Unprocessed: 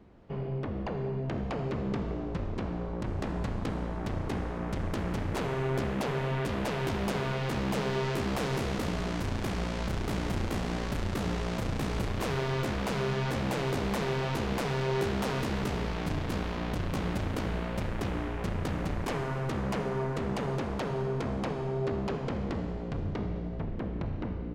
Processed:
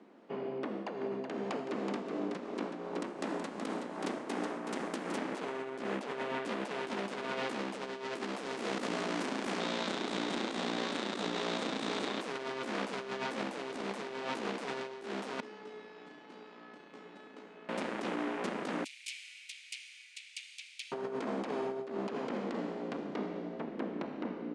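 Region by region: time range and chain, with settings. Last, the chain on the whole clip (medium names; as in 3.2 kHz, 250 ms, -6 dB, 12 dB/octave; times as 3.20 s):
0.64–5.18 s: treble shelf 7.8 kHz +10.5 dB + tremolo triangle 2.7 Hz, depth 55% + delay 374 ms -6.5 dB
9.60–12.21 s: low-pass 9 kHz 24 dB/octave + peaking EQ 3.7 kHz +9 dB 0.3 oct
15.40–17.69 s: distance through air 97 m + feedback comb 430 Hz, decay 0.67 s, mix 90%
18.84–20.92 s: Chebyshev high-pass 2.3 kHz, order 5 + treble shelf 8.6 kHz +5 dB
whole clip: elliptic band-pass 240–9400 Hz, stop band 40 dB; compressor with a negative ratio -36 dBFS, ratio -0.5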